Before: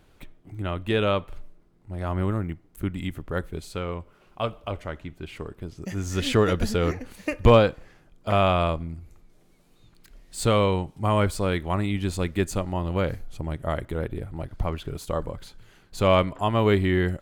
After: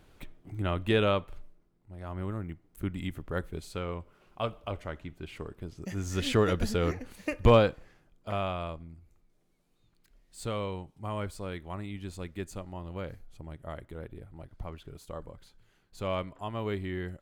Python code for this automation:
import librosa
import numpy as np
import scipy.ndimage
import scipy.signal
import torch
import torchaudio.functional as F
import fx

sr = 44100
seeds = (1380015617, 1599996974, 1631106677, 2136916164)

y = fx.gain(x, sr, db=fx.line((0.89, -1.0), (1.97, -12.0), (2.92, -4.5), (7.7, -4.5), (8.58, -13.0)))